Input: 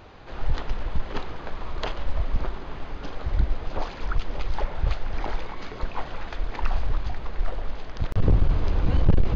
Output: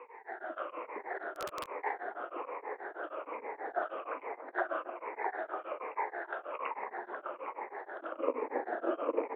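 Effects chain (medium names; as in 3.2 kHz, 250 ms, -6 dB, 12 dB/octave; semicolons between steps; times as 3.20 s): drifting ripple filter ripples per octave 0.72, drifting -1.2 Hz, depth 22 dB; 4.37–4.96 s: compressor with a negative ratio -26 dBFS, ratio -0.5; flange 0.23 Hz, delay 8.8 ms, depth 7 ms, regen +53%; mistuned SSB +150 Hz 210–2100 Hz; doubling 42 ms -12 dB; feedback echo behind a low-pass 274 ms, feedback 71%, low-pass 820 Hz, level -7 dB; 1.34–1.76 s: integer overflow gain 28.5 dB; tremolo of two beating tones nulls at 6.3 Hz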